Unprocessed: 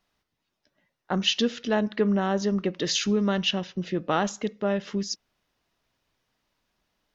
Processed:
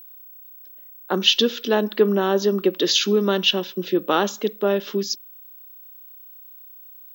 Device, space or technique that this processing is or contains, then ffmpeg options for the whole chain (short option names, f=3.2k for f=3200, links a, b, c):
old television with a line whistle: -af "highpass=f=220:w=0.5412,highpass=f=220:w=1.3066,equalizer=f=250:t=q:w=4:g=-3,equalizer=f=380:t=q:w=4:g=5,equalizer=f=710:t=q:w=4:g=-5,equalizer=f=2k:t=q:w=4:g=-7,equalizer=f=3.5k:t=q:w=4:g=5,lowpass=f=6.6k:w=0.5412,lowpass=f=6.6k:w=1.3066,aeval=exprs='val(0)+0.00447*sin(2*PI*15734*n/s)':c=same,volume=6dB"